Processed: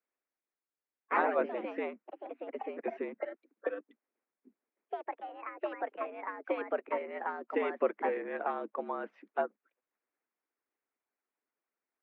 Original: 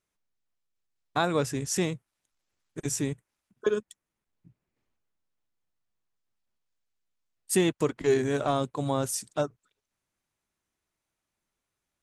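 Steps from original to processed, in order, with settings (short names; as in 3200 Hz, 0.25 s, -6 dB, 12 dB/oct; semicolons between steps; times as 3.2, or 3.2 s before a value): echoes that change speed 0.144 s, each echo +3 st, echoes 3; mistuned SSB +85 Hz 160–2300 Hz; harmonic-percussive split harmonic -11 dB; gain -1.5 dB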